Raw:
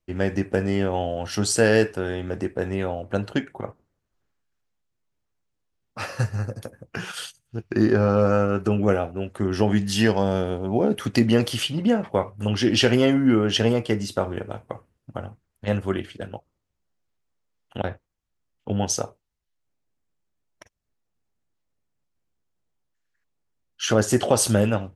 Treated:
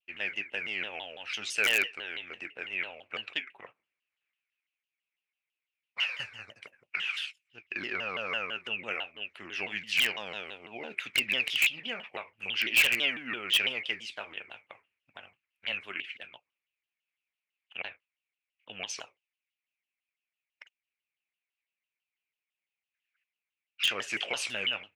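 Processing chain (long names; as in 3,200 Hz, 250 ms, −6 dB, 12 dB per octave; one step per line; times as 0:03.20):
resonant band-pass 2,500 Hz, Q 9.9
in parallel at −5 dB: wrap-around overflow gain 28.5 dB
on the sum: pitch modulation by a square or saw wave saw down 6 Hz, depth 250 cents
level +9 dB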